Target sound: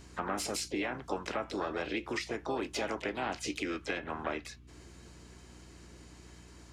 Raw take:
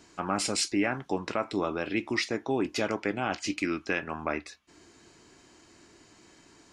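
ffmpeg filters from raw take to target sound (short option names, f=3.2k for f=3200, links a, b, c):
-filter_complex "[0:a]acrossover=split=290|660[a][b][c];[a]acompressor=threshold=-46dB:ratio=4[d];[b]acompressor=threshold=-36dB:ratio=4[e];[c]acompressor=threshold=-35dB:ratio=4[f];[d][e][f]amix=inputs=3:normalize=0,aeval=exprs='val(0)+0.00224*(sin(2*PI*60*n/s)+sin(2*PI*2*60*n/s)/2+sin(2*PI*3*60*n/s)/3+sin(2*PI*4*60*n/s)/4+sin(2*PI*5*60*n/s)/5)':c=same,asplit=3[g][h][i];[h]asetrate=55563,aresample=44100,atempo=0.793701,volume=-8dB[j];[i]asetrate=66075,aresample=44100,atempo=0.66742,volume=-13dB[k];[g][j][k]amix=inputs=3:normalize=0,volume=-1dB"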